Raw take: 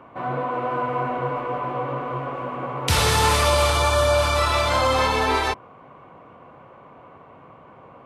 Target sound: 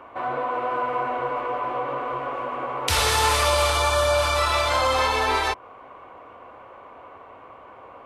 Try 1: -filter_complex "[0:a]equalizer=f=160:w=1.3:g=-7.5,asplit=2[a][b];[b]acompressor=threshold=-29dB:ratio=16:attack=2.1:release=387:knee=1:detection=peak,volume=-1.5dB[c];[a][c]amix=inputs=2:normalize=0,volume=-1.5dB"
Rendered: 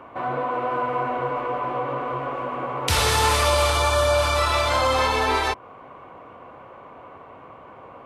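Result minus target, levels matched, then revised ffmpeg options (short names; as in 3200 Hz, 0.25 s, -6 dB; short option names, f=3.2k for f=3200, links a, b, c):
125 Hz band +3.0 dB
-filter_complex "[0:a]equalizer=f=160:w=1.3:g=-19,asplit=2[a][b];[b]acompressor=threshold=-29dB:ratio=16:attack=2.1:release=387:knee=1:detection=peak,volume=-1.5dB[c];[a][c]amix=inputs=2:normalize=0,volume=-1.5dB"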